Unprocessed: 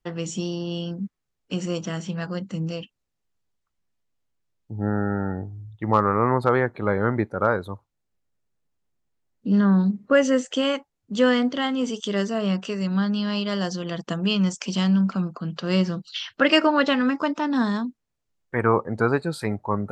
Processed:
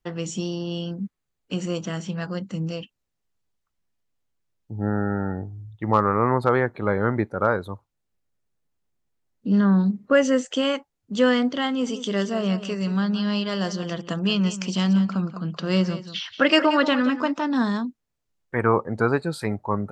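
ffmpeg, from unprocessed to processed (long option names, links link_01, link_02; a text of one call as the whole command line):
ffmpeg -i in.wav -filter_complex "[0:a]asettb=1/sr,asplit=3[link_01][link_02][link_03];[link_01]atrim=end=0.864[link_04];[link_02]atrim=start=0.86:end=1.93,asetpts=PTS-STARTPTS,afade=type=in:duration=0.004:curve=qsin,afade=type=out:start_time=1.066:duration=0.004:curve=qsin,bandreject=frequency=5400:width=12[link_05];[link_03]atrim=start=1.926[link_06];[link_04][link_05]acrossfade=duration=0.004:curve1=hsin:curve2=qsin[link_07];[link_07][link_06]acrossfade=duration=0.004:curve1=qsin:curve2=hsin,asplit=3[link_08][link_09][link_10];[link_08]afade=type=out:start_time=11.86:duration=0.02[link_11];[link_09]aecho=1:1:179:0.237,afade=type=in:start_time=11.86:duration=0.02,afade=type=out:start_time=17.42:duration=0.02[link_12];[link_10]afade=type=in:start_time=17.42:duration=0.02[link_13];[link_11][link_12][link_13]amix=inputs=3:normalize=0" out.wav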